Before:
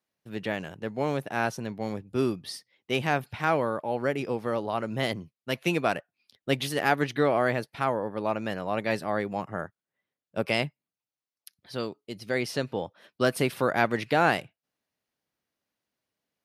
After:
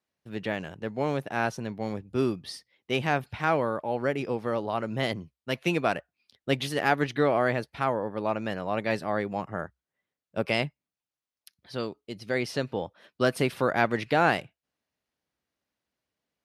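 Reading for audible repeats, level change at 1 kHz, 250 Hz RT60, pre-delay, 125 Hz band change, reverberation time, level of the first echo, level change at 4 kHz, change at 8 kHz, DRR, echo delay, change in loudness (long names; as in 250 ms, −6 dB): no echo audible, 0.0 dB, no reverb audible, no reverb audible, +0.5 dB, no reverb audible, no echo audible, −0.5 dB, −3.0 dB, no reverb audible, no echo audible, 0.0 dB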